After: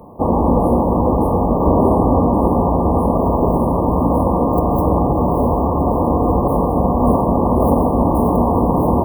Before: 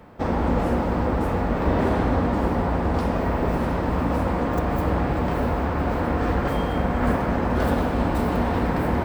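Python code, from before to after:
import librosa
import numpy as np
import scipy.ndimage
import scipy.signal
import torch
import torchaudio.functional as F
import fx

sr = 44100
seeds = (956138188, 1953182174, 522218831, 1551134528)

y = fx.brickwall_bandstop(x, sr, low_hz=1200.0, high_hz=8700.0)
y = fx.low_shelf(y, sr, hz=100.0, db=-5.5)
y = y * 10.0 ** (9.0 / 20.0)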